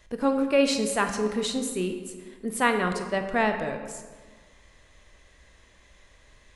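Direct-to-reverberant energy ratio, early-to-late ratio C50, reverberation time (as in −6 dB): 6.0 dB, 7.5 dB, 1.5 s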